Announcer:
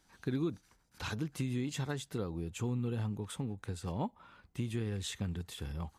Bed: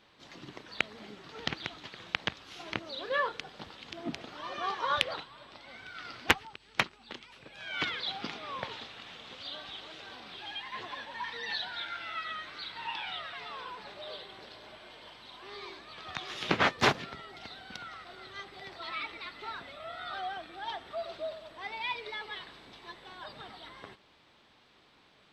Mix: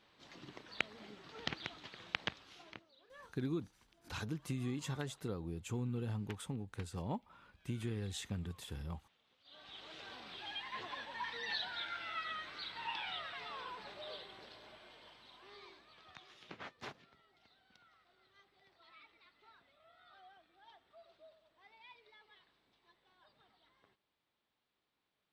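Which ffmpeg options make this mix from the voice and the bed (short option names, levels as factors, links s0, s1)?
-filter_complex "[0:a]adelay=3100,volume=0.631[s0];[1:a]volume=7.5,afade=t=out:st=2.26:d=0.62:silence=0.0841395,afade=t=in:st=9.44:d=0.56:silence=0.0668344,afade=t=out:st=13.87:d=2.61:silence=0.105925[s1];[s0][s1]amix=inputs=2:normalize=0"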